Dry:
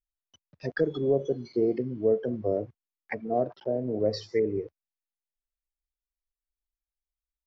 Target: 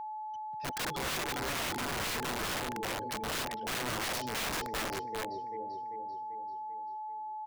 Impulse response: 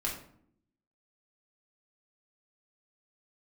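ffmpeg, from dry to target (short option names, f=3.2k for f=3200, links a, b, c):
-filter_complex "[0:a]acrossover=split=140|3000[a][b][c];[a]acompressor=threshold=-44dB:ratio=3[d];[d][b][c]amix=inputs=3:normalize=0,aecho=1:1:391|782|1173|1564|1955|2346|2737:0.501|0.271|0.146|0.0789|0.0426|0.023|0.0124,aeval=exprs='val(0)+0.02*sin(2*PI*860*n/s)':c=same,aeval=exprs='(mod(20*val(0)+1,2)-1)/20':c=same,volume=-3.5dB"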